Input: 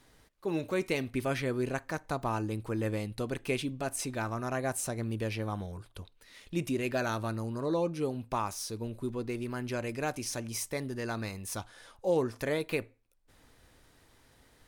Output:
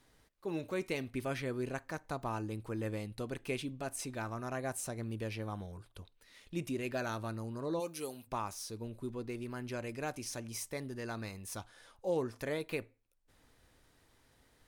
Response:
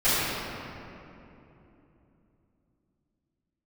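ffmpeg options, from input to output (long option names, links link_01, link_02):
-filter_complex "[0:a]asplit=3[link_01][link_02][link_03];[link_01]afade=type=out:start_time=7.79:duration=0.02[link_04];[link_02]aemphasis=mode=production:type=riaa,afade=type=in:start_time=7.79:duration=0.02,afade=type=out:start_time=8.26:duration=0.02[link_05];[link_03]afade=type=in:start_time=8.26:duration=0.02[link_06];[link_04][link_05][link_06]amix=inputs=3:normalize=0,volume=-5.5dB"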